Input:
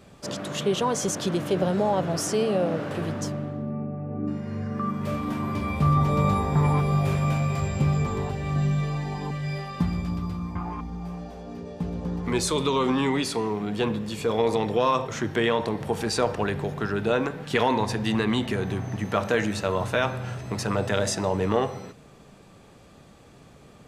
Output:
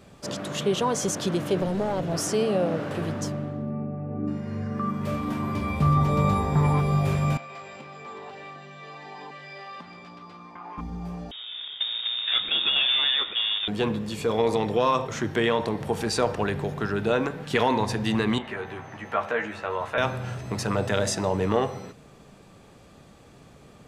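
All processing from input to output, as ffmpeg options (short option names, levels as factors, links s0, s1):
-filter_complex "[0:a]asettb=1/sr,asplit=3[s0][s1][s2];[s0]atrim=end=1.604[s3];[s1]atrim=start=1.6:end=2.12,asetpts=PTS-STARTPTS,afade=t=in:d=0.004:c=qsin,afade=t=out:st=0.516:d=0.004:c=qsin,equalizer=f=1200:w=0.98:g=-6.5,aeval=exprs='clip(val(0),-1,0.0596)':c=same[s4];[s2]atrim=start=2.116[s5];[s3][s4]acrossfade=d=0.004:c1=hsin:c2=qsin[s6];[s6][s5]acrossfade=d=0.004:c1=qsin:c2=hsin,asettb=1/sr,asplit=3[s7][s8][s9];[s7]atrim=end=7.374[s10];[s8]atrim=start=7.37:end=10.78,asetpts=PTS-STARTPTS,afade=t=in:d=0.004:c=qsin,afade=t=out:st=3.406:d=0.004:c=qsin,lowshelf=f=430:g=-10,acompressor=threshold=0.02:ratio=4:attack=3.2:release=140:knee=1:detection=peak,highpass=300,lowpass=4400[s11];[s9]atrim=start=10.776[s12];[s10][s11]acrossfade=d=0.004:c1=hsin:c2=qsin[s13];[s13][s12]acrossfade=d=0.004:c1=qsin:c2=hsin,asettb=1/sr,asplit=3[s14][s15][s16];[s14]atrim=end=11.314[s17];[s15]atrim=start=11.31:end=13.68,asetpts=PTS-STARTPTS,afade=t=in:d=0.004:c=qsin,afade=t=out:st=2.366:d=0.004:c=qsin,acrusher=bits=2:mode=log:mix=0:aa=0.000001,lowpass=f=3200:t=q:w=0.5098,lowpass=f=3200:t=q:w=0.6013,lowpass=f=3200:t=q:w=0.9,lowpass=f=3200:t=q:w=2.563,afreqshift=-3800[s18];[s16]atrim=start=13.676[s19];[s17][s18]acrossfade=d=0.004:c1=hsin:c2=qsin[s20];[s20][s19]acrossfade=d=0.004:c1=qsin:c2=hsin,asettb=1/sr,asplit=3[s21][s22][s23];[s21]atrim=end=18.384[s24];[s22]atrim=start=18.38:end=19.98,asetpts=PTS-STARTPTS,afade=t=in:d=0.004:c=qsin,afade=t=out:st=1.596:d=0.004:c=qsin,acrossover=split=570 3200:gain=0.224 1 0.251[s25][s26][s27];[s25][s26][s27]amix=inputs=3:normalize=0,asplit=2[s28][s29];[s29]adelay=13,volume=0.631[s30];[s28][s30]amix=inputs=2:normalize=0,atrim=end_sample=70560,acrossover=split=2600[s31][s32];[s32]acompressor=threshold=0.00447:ratio=4:attack=1:release=60[s33];[s31][s33]amix=inputs=2:normalize=0[s34];[s23]atrim=start=19.976[s35];[s24][s34]acrossfade=d=0.004:c1=hsin:c2=qsin[s36];[s36][s35]acrossfade=d=0.004:c1=qsin:c2=hsin"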